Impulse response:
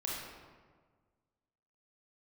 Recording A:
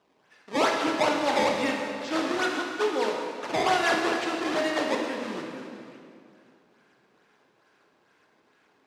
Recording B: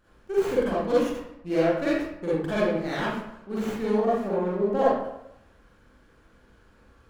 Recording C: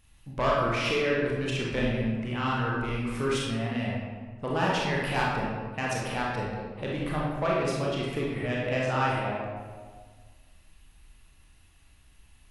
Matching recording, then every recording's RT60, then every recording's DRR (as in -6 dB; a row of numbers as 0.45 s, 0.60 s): C; 2.4 s, 0.85 s, 1.5 s; 0.0 dB, -9.5 dB, -4.5 dB